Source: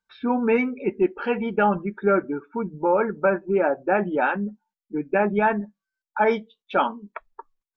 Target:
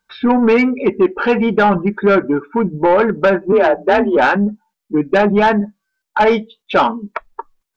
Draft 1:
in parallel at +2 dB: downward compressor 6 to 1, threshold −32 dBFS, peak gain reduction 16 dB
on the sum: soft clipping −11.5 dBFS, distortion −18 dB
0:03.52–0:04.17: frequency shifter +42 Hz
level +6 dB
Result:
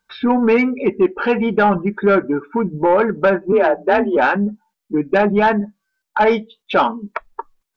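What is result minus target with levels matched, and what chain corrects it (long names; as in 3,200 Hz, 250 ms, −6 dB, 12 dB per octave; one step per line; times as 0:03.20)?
downward compressor: peak gain reduction +10 dB
in parallel at +2 dB: downward compressor 6 to 1, threshold −20 dBFS, peak gain reduction 6 dB
on the sum: soft clipping −11.5 dBFS, distortion −14 dB
0:03.52–0:04.17: frequency shifter +42 Hz
level +6 dB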